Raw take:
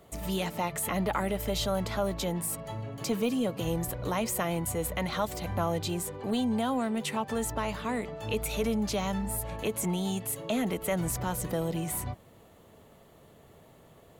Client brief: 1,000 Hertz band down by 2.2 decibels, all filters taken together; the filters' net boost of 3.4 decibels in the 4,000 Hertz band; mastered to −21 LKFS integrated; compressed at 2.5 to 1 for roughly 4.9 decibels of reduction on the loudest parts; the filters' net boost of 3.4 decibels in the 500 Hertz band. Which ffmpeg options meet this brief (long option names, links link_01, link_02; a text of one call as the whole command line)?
ffmpeg -i in.wav -af "equalizer=frequency=500:width_type=o:gain=5.5,equalizer=frequency=1000:width_type=o:gain=-5.5,equalizer=frequency=4000:width_type=o:gain=4.5,acompressor=threshold=-29dB:ratio=2.5,volume=11.5dB" out.wav